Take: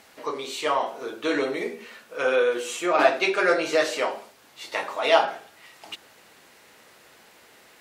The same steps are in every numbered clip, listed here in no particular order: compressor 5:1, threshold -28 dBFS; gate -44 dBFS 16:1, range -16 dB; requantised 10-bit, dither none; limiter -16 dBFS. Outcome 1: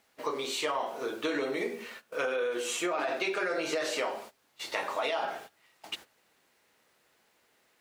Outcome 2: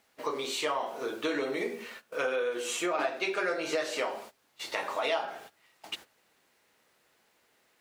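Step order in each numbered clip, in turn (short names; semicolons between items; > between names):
requantised > limiter > gate > compressor; requantised > gate > compressor > limiter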